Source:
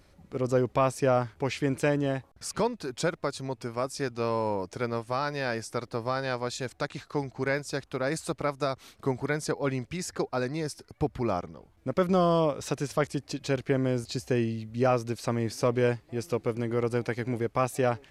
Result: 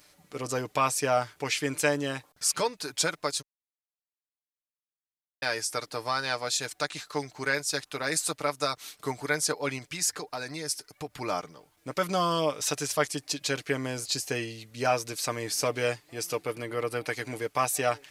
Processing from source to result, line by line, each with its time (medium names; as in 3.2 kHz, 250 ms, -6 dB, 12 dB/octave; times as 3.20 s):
3.42–5.42 s: mute
9.78–11.21 s: compression 4:1, threshold -30 dBFS
16.41–17.06 s: peaking EQ 6.5 kHz -6.5 dB -> -13.5 dB 0.79 oct
whole clip: tilt EQ +3.5 dB/octave; comb 6.7 ms, depth 51%